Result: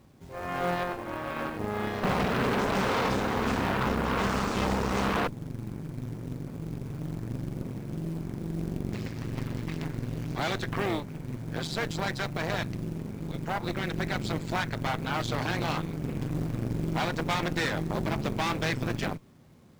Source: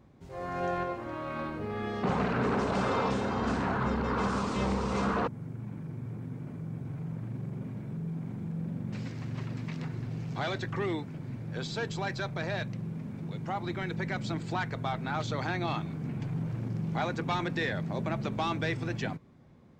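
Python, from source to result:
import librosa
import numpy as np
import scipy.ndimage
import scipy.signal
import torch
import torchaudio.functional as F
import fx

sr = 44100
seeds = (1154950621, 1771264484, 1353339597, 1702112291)

y = fx.cheby_harmonics(x, sr, harmonics=(5, 6), levels_db=(-31, -11), full_scale_db=-18.0)
y = fx.quant_companded(y, sr, bits=6)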